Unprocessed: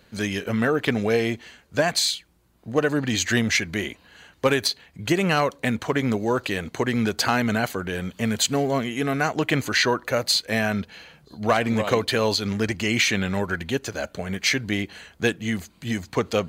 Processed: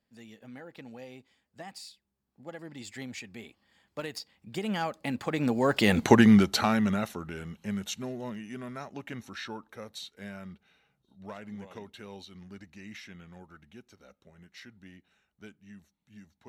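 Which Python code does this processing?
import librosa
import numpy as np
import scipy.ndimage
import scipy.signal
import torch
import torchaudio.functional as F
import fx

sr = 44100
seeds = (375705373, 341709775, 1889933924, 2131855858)

y = fx.doppler_pass(x, sr, speed_mps=36, closest_m=5.6, pass_at_s=6.03)
y = fx.small_body(y, sr, hz=(210.0, 820.0), ring_ms=45, db=7)
y = y * librosa.db_to_amplitude(6.0)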